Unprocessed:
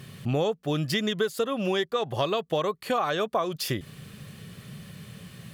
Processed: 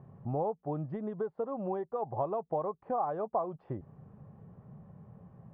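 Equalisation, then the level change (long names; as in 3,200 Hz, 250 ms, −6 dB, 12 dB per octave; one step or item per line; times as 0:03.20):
transistor ladder low-pass 960 Hz, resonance 60%
low-shelf EQ 130 Hz +5 dB
0.0 dB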